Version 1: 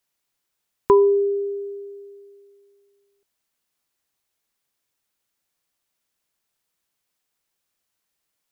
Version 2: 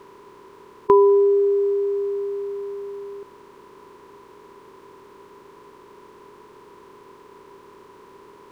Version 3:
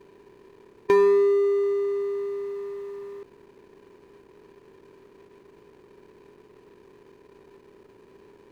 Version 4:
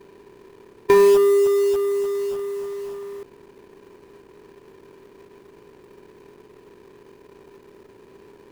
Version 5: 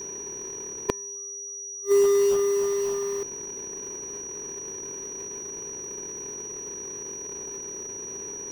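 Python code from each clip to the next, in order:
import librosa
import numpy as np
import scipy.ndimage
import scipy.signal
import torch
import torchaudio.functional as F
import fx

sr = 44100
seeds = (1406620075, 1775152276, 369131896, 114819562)

y1 = fx.bin_compress(x, sr, power=0.4)
y1 = fx.low_shelf(y1, sr, hz=110.0, db=-9.0)
y2 = scipy.signal.medfilt(y1, 41)
y2 = F.gain(torch.from_numpy(y2), -2.5).numpy()
y3 = fx.quant_float(y2, sr, bits=2)
y3 = F.gain(torch.from_numpy(y3), 4.5).numpy()
y4 = fx.gate_flip(y3, sr, shuts_db=-18.0, range_db=-40)
y4 = y4 + 10.0 ** (-39.0 / 20.0) * np.sin(2.0 * np.pi * 5800.0 * np.arange(len(y4)) / sr)
y4 = F.gain(torch.from_numpy(y4), 4.5).numpy()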